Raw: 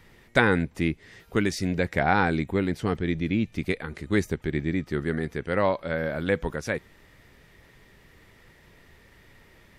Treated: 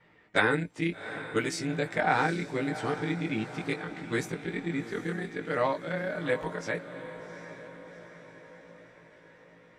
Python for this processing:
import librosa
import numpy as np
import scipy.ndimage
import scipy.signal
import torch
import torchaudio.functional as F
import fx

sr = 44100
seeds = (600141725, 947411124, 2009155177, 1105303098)

p1 = fx.frame_reverse(x, sr, frame_ms=36.0)
p2 = fx.env_lowpass(p1, sr, base_hz=2300.0, full_db=-24.0)
p3 = fx.highpass(p2, sr, hz=300.0, slope=6)
p4 = fx.peak_eq(p3, sr, hz=7900.0, db=6.5, octaves=0.33)
p5 = p4 + 0.37 * np.pad(p4, (int(6.6 * sr / 1000.0), 0))[:len(p4)]
y = p5 + fx.echo_diffused(p5, sr, ms=760, feedback_pct=54, wet_db=-12.0, dry=0)